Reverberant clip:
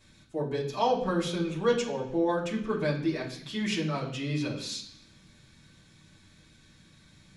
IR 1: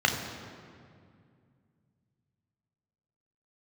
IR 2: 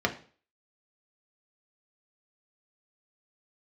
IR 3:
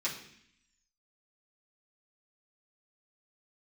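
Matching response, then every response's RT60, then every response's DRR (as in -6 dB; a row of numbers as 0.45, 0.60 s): 3; 2.2, 0.40, 0.65 s; 2.0, 1.5, -9.0 dB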